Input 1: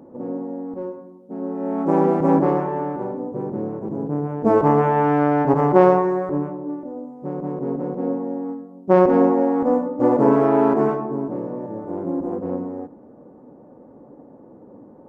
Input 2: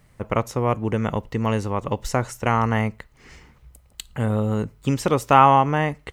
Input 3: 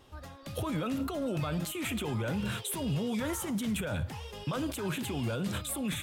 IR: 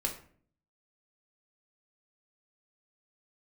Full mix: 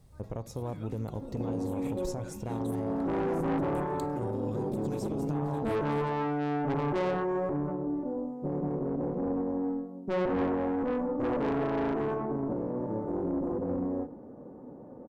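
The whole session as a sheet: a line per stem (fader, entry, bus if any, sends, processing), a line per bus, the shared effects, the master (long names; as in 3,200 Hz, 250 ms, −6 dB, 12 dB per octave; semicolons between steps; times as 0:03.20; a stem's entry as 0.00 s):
−1.0 dB, 1.20 s, send −19 dB, every ending faded ahead of time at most 240 dB per second
−4.5 dB, 0.00 s, send −15.5 dB, flat-topped bell 1,900 Hz −13.5 dB; downward compressor 6 to 1, threshold −28 dBFS, peak gain reduction 15 dB
−12.5 dB, 0.00 s, no send, notch filter 3,000 Hz, Q 5.7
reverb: on, RT60 0.50 s, pre-delay 4 ms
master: low-shelf EQ 200 Hz +5.5 dB; tube saturation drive 17 dB, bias 0.55; brickwall limiter −24 dBFS, peak gain reduction 10 dB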